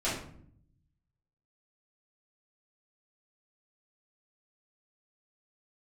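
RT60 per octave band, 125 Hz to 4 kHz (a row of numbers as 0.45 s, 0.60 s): 1.4 s, 1.0 s, 0.70 s, 0.55 s, 0.50 s, 0.40 s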